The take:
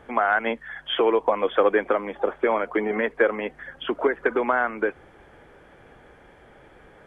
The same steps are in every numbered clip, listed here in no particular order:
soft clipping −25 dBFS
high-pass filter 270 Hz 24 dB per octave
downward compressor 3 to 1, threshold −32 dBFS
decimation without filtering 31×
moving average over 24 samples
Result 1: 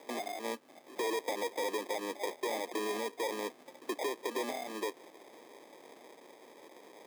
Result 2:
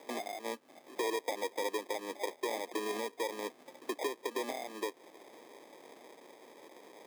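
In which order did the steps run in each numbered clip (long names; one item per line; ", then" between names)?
soft clipping, then downward compressor, then moving average, then decimation without filtering, then high-pass filter
downward compressor, then soft clipping, then moving average, then decimation without filtering, then high-pass filter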